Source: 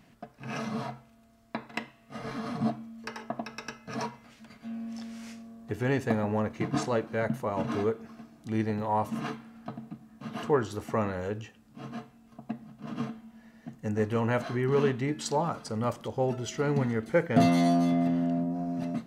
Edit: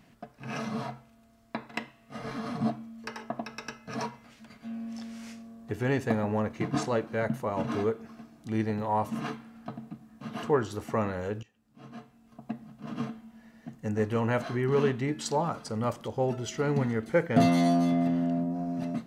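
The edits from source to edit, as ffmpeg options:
-filter_complex "[0:a]asplit=2[a][b];[a]atrim=end=11.43,asetpts=PTS-STARTPTS,afade=t=out:st=11.426:d=0.004:c=hsin:silence=0.112202[c];[b]atrim=start=11.43,asetpts=PTS-STARTPTS,afade=t=in:d=1.09:silence=0.112202[d];[c][d]concat=n=2:v=0:a=1"

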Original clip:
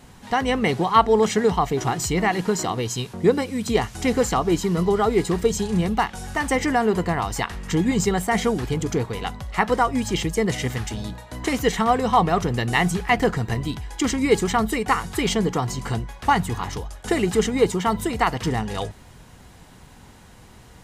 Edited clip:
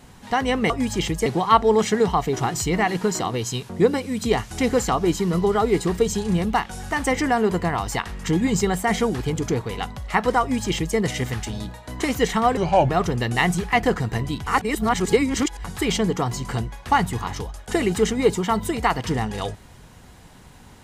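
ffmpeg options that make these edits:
-filter_complex "[0:a]asplit=7[a][b][c][d][e][f][g];[a]atrim=end=0.702[h];[b]atrim=start=9.848:end=10.412[i];[c]atrim=start=0.698:end=12.014[j];[d]atrim=start=12.01:end=12.26,asetpts=PTS-STARTPTS,asetrate=33957,aresample=44100,atrim=end_sample=14318,asetpts=PTS-STARTPTS[k];[e]atrim=start=12.256:end=13.832[l];[f]atrim=start=13.828:end=15.012,asetpts=PTS-STARTPTS,areverse[m];[g]atrim=start=15.008[n];[h][i]acrossfade=d=0.004:c1=hsin:c2=hsin[o];[o][j]acrossfade=d=0.004:c1=hsin:c2=hsin[p];[p][k]acrossfade=d=0.004:c1=hsin:c2=hsin[q];[q][l]acrossfade=d=0.004:c1=hsin:c2=hsin[r];[r][m]acrossfade=d=0.004:c1=hsin:c2=hsin[s];[s][n]acrossfade=d=0.004:c1=hsin:c2=hsin"

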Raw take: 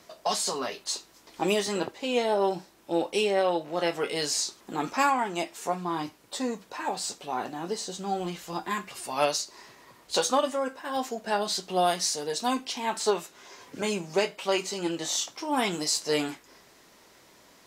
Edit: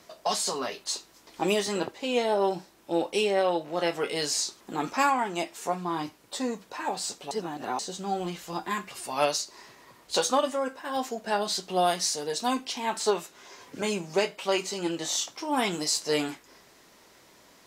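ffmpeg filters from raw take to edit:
-filter_complex "[0:a]asplit=3[a][b][c];[a]atrim=end=7.312[d];[b]atrim=start=7.308:end=7.792,asetpts=PTS-STARTPTS,areverse[e];[c]atrim=start=7.788[f];[d][e]acrossfade=d=0.004:c1=hsin:c2=hsin[g];[g][f]acrossfade=d=0.004:c1=hsin:c2=hsin"

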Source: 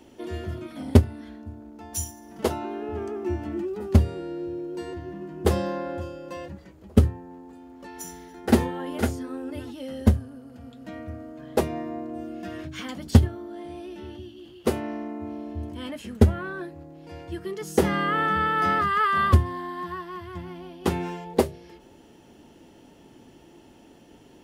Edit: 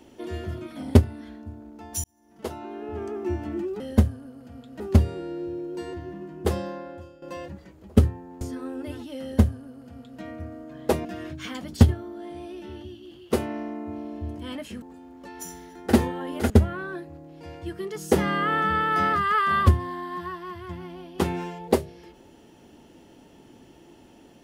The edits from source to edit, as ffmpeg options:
-filter_complex "[0:a]asplit=9[a][b][c][d][e][f][g][h][i];[a]atrim=end=2.04,asetpts=PTS-STARTPTS,afade=t=out:st=2.036:d=0.004:c=hsin[j];[b]atrim=start=2.04:end=3.802,asetpts=PTS-STARTPTS,afade=t=in:d=1.11[k];[c]atrim=start=9.888:end=10.892[l];[d]atrim=start=3.798:end=6.22,asetpts=PTS-STARTPTS,afade=t=out:st=1.222:d=1.2:silence=0.211349[m];[e]atrim=start=6.22:end=7.412,asetpts=PTS-STARTPTS,afade=t=in:d=0.004:c=hsin:silence=0.211349[n];[f]atrim=start=9.088:end=11.732[o];[g]atrim=start=12.388:end=16.162[p];[h]atrim=start=7.408:end=9.092[q];[i]atrim=start=16.158[r];[j][k]concat=n=2:v=0:a=1[s];[s][l]acrossfade=d=0.004:c1=hsin:c2=hsin[t];[m][n]concat=n=2:v=0:a=1[u];[t][u]acrossfade=d=0.004:c1=hsin:c2=hsin[v];[v][o]acrossfade=d=0.004:c1=hsin:c2=hsin[w];[w][p]acrossfade=d=0.004:c1=hsin:c2=hsin[x];[x][q]acrossfade=d=0.004:c1=hsin:c2=hsin[y];[y][r]acrossfade=d=0.004:c1=hsin:c2=hsin"

